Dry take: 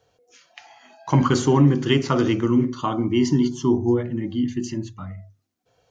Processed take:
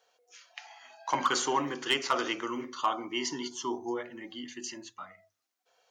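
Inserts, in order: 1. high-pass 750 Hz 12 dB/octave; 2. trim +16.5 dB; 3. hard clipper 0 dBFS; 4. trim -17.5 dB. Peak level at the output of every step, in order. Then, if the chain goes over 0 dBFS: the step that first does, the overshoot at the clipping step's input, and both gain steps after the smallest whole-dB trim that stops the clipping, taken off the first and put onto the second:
-11.0 dBFS, +5.5 dBFS, 0.0 dBFS, -17.5 dBFS; step 2, 5.5 dB; step 2 +10.5 dB, step 4 -11.5 dB

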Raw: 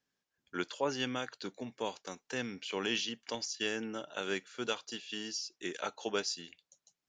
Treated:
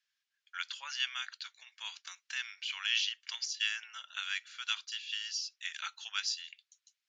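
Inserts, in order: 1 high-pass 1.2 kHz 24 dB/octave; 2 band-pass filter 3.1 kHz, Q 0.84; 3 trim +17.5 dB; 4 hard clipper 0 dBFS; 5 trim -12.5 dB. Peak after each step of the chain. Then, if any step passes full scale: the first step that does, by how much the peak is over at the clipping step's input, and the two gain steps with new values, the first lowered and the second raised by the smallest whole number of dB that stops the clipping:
-21.5 dBFS, -22.0 dBFS, -4.5 dBFS, -4.5 dBFS, -17.0 dBFS; nothing clips

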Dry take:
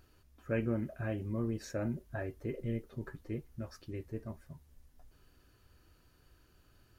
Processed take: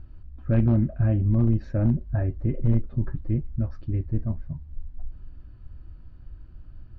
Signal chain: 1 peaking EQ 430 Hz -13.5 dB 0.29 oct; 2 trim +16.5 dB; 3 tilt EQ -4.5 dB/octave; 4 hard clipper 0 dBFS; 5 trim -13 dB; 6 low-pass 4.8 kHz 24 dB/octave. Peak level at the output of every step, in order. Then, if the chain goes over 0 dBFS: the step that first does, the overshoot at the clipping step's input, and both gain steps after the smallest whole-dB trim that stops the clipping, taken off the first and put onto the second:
-23.0 dBFS, -6.5 dBFS, +4.0 dBFS, 0.0 dBFS, -13.0 dBFS, -13.0 dBFS; step 3, 4.0 dB; step 2 +12.5 dB, step 5 -9 dB

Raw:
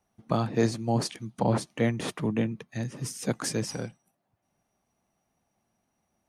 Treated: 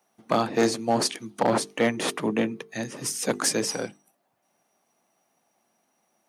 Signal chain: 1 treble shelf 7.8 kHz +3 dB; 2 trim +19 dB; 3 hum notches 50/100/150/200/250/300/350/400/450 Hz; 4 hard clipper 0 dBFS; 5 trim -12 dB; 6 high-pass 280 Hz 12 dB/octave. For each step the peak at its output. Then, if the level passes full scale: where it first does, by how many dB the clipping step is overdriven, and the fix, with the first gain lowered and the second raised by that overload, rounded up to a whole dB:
-12.0 dBFS, +7.0 dBFS, +7.0 dBFS, 0.0 dBFS, -12.0 dBFS, -8.0 dBFS; step 2, 7.0 dB; step 2 +12 dB, step 5 -5 dB

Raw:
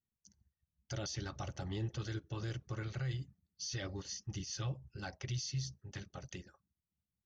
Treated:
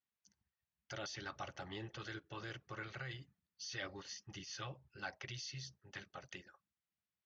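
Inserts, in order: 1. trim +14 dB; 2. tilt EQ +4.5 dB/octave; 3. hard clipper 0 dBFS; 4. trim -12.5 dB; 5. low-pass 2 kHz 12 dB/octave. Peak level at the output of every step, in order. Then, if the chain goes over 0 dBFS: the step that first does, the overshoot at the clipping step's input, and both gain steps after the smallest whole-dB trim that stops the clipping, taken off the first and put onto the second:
-15.5 dBFS, -5.0 dBFS, -5.0 dBFS, -17.5 dBFS, -30.0 dBFS; nothing clips

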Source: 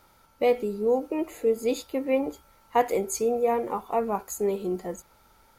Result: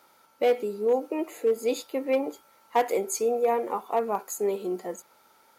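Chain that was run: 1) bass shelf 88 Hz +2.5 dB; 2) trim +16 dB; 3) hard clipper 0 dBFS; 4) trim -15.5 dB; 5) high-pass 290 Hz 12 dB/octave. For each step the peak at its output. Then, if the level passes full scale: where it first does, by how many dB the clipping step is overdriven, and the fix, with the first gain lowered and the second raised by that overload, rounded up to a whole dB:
-9.0 dBFS, +7.0 dBFS, 0.0 dBFS, -15.5 dBFS, -11.5 dBFS; step 2, 7.0 dB; step 2 +9 dB, step 4 -8.5 dB

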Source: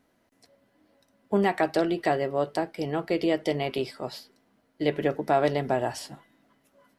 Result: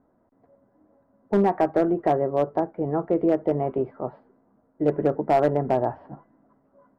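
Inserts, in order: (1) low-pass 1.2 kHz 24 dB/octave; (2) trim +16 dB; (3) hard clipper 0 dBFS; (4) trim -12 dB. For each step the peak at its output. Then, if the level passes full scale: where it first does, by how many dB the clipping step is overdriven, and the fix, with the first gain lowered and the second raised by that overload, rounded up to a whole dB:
-11.0 dBFS, +5.0 dBFS, 0.0 dBFS, -12.0 dBFS; step 2, 5.0 dB; step 2 +11 dB, step 4 -7 dB

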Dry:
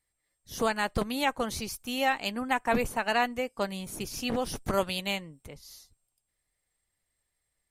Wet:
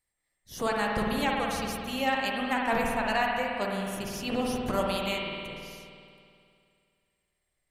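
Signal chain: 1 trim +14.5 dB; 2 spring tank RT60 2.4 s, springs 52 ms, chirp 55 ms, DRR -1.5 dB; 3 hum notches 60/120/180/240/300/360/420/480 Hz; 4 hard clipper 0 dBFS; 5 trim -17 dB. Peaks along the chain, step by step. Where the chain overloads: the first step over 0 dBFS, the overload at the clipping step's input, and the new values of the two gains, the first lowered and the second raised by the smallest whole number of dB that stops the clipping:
+1.5 dBFS, +3.5 dBFS, +3.0 dBFS, 0.0 dBFS, -17.0 dBFS; step 1, 3.0 dB; step 1 +11.5 dB, step 5 -14 dB

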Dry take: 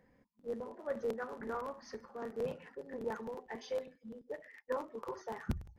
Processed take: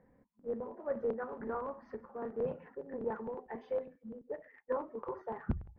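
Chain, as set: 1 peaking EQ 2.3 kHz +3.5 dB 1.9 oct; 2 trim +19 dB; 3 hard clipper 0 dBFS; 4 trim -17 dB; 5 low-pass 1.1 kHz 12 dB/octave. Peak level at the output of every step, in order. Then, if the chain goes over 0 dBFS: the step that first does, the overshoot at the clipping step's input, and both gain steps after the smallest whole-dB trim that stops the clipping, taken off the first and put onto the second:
-22.5 dBFS, -3.5 dBFS, -3.5 dBFS, -20.5 dBFS, -22.0 dBFS; nothing clips

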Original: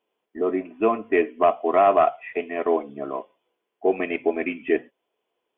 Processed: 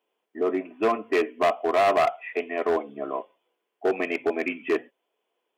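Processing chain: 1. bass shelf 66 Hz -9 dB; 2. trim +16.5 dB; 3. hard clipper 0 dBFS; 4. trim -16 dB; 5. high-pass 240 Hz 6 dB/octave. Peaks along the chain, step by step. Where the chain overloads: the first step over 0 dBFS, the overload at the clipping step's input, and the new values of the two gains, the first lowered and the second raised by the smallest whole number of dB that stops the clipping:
-8.0 dBFS, +8.5 dBFS, 0.0 dBFS, -16.0 dBFS, -12.5 dBFS; step 2, 8.5 dB; step 2 +7.5 dB, step 4 -7 dB

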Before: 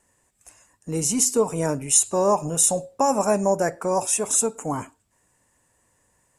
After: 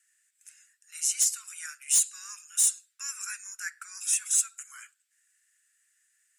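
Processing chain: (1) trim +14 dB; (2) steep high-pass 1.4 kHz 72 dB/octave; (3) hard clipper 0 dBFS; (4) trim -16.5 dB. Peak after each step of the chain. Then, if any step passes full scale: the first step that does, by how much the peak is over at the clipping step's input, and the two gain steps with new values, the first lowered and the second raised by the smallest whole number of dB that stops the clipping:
+9.0 dBFS, +9.0 dBFS, 0.0 dBFS, -16.5 dBFS; step 1, 9.0 dB; step 1 +5 dB, step 4 -7.5 dB

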